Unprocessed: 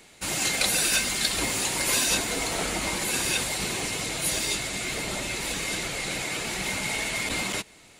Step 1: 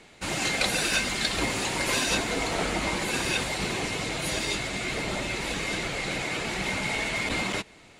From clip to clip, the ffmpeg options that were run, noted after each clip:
-af "aemphasis=mode=reproduction:type=50fm,volume=1.26"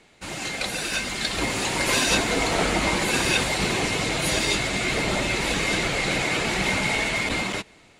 -af "dynaudnorm=f=420:g=7:m=3.16,volume=0.668"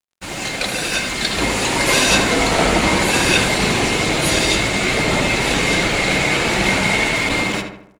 -filter_complex "[0:a]aeval=exprs='sgn(val(0))*max(abs(val(0))-0.00422,0)':c=same,asplit=2[s0][s1];[s1]adelay=76,lowpass=f=2300:p=1,volume=0.562,asplit=2[s2][s3];[s3]adelay=76,lowpass=f=2300:p=1,volume=0.5,asplit=2[s4][s5];[s5]adelay=76,lowpass=f=2300:p=1,volume=0.5,asplit=2[s6][s7];[s7]adelay=76,lowpass=f=2300:p=1,volume=0.5,asplit=2[s8][s9];[s9]adelay=76,lowpass=f=2300:p=1,volume=0.5,asplit=2[s10][s11];[s11]adelay=76,lowpass=f=2300:p=1,volume=0.5[s12];[s0][s2][s4][s6][s8][s10][s12]amix=inputs=7:normalize=0,volume=2.11"

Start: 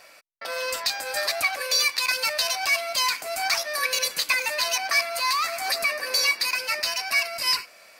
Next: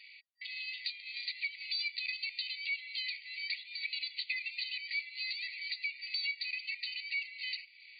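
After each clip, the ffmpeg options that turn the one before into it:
-af "afftfilt=real='re*between(b*sr/4096,1900,4700)':imag='im*between(b*sr/4096,1900,4700)':win_size=4096:overlap=0.75,acompressor=threshold=0.00631:ratio=2"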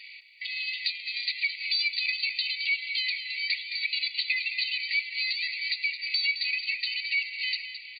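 -af "aecho=1:1:216|432|648|864:0.316|0.126|0.0506|0.0202,volume=2.66"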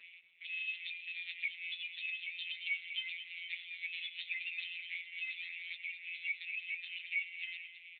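-af "afftfilt=real='hypot(re,im)*cos(PI*b)':imag='0':win_size=1024:overlap=0.75,aderivative,volume=1.88" -ar 8000 -c:a libopencore_amrnb -b:a 5900

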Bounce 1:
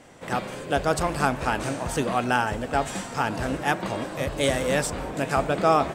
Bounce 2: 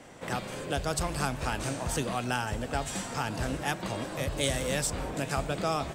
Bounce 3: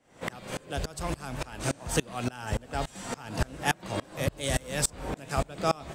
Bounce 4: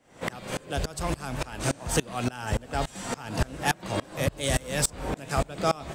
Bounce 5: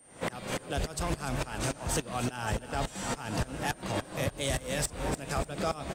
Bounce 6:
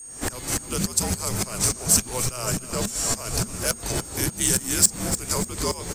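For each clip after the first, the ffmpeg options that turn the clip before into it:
-filter_complex "[0:a]acrossover=split=140|3000[s0][s1][s2];[s1]acompressor=threshold=0.0158:ratio=2[s3];[s0][s3][s2]amix=inputs=3:normalize=0"
-af "aeval=exprs='val(0)*pow(10,-28*if(lt(mod(-3.5*n/s,1),2*abs(-3.5)/1000),1-mod(-3.5*n/s,1)/(2*abs(-3.5)/1000),(mod(-3.5*n/s,1)-2*abs(-3.5)/1000)/(1-2*abs(-3.5)/1000))/20)':c=same,volume=2.37"
-af "asoftclip=type=tanh:threshold=0.15,volume=1.5"
-af "alimiter=limit=0.0841:level=0:latency=1:release=75,aeval=exprs='val(0)+0.00158*sin(2*PI*8900*n/s)':c=same,aecho=1:1:295|590|885|1180:0.282|0.101|0.0365|0.0131"
-af "afreqshift=-240,aeval=exprs='val(0)+0.000794*sin(2*PI*6600*n/s)':c=same,aexciter=amount=5:drive=3.7:freq=4600,volume=1.58"

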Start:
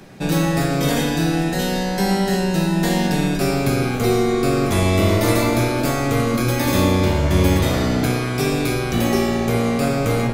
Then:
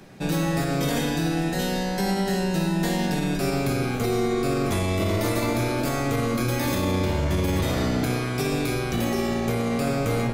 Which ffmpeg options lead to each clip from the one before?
-af "alimiter=limit=0.299:level=0:latency=1:release=35,volume=0.596"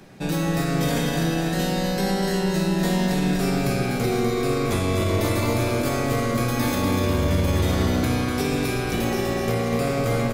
-af "aecho=1:1:247|494|741|988|1235|1482|1729|1976:0.501|0.296|0.174|0.103|0.0607|0.0358|0.0211|0.0125"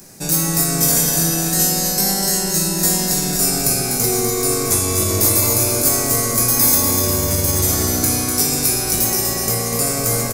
-filter_complex "[0:a]aexciter=amount=8.6:drive=5.6:freq=4900,asplit=2[s0][s1];[s1]adelay=19,volume=0.398[s2];[s0][s2]amix=inputs=2:normalize=0"

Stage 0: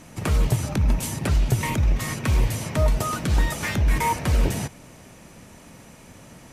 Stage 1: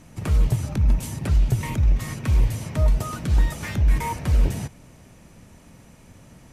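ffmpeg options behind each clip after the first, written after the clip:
-af "lowshelf=f=170:g=9,volume=0.501"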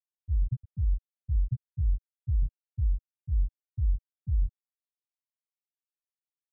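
-af "afftfilt=real='re*gte(hypot(re,im),0.794)':imag='im*gte(hypot(re,im),0.794)':win_size=1024:overlap=0.75,volume=0.398"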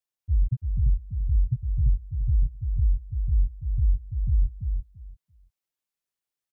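-af "aecho=1:1:338|676|1014:0.501|0.0852|0.0145,volume=1.68"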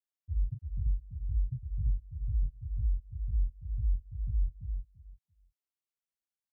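-af "flanger=delay=18.5:depth=7.1:speed=2.1,volume=0.447"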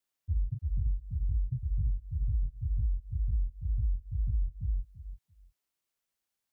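-af "acompressor=threshold=0.0178:ratio=6,volume=2.51"

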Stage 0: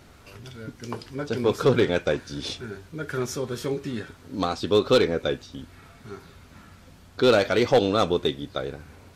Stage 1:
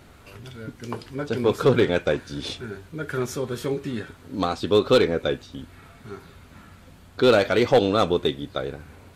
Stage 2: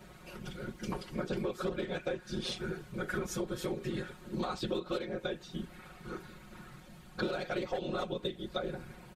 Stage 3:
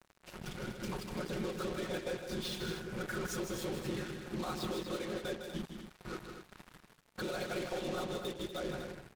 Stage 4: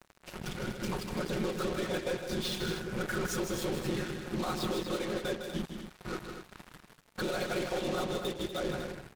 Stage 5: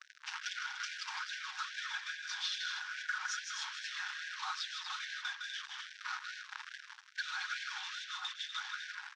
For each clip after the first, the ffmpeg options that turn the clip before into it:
-af "equalizer=f=5500:w=2.2:g=-5,volume=1.19"
-af "afftfilt=real='hypot(re,im)*cos(2*PI*random(0))':imag='hypot(re,im)*sin(2*PI*random(1))':win_size=512:overlap=0.75,aecho=1:1:5.5:0.96,acompressor=threshold=0.0282:ratio=20"
-af "alimiter=level_in=1.88:limit=0.0631:level=0:latency=1:release=16,volume=0.531,acrusher=bits=6:mix=0:aa=0.5,aecho=1:1:157.4|242:0.447|0.355,volume=0.891"
-af "aeval=exprs='if(lt(val(0),0),0.708*val(0),val(0))':c=same,volume=2"
-af "highpass=420,equalizer=f=710:t=q:w=4:g=-3,equalizer=f=1600:t=q:w=4:g=7,equalizer=f=3400:t=q:w=4:g=3,equalizer=f=5700:t=q:w=4:g=6,lowpass=f=6000:w=0.5412,lowpass=f=6000:w=1.3066,acompressor=threshold=0.00708:ratio=3,afftfilt=real='re*gte(b*sr/1024,740*pow(1500/740,0.5+0.5*sin(2*PI*2.4*pts/sr)))':imag='im*gte(b*sr/1024,740*pow(1500/740,0.5+0.5*sin(2*PI*2.4*pts/sr)))':win_size=1024:overlap=0.75,volume=2"

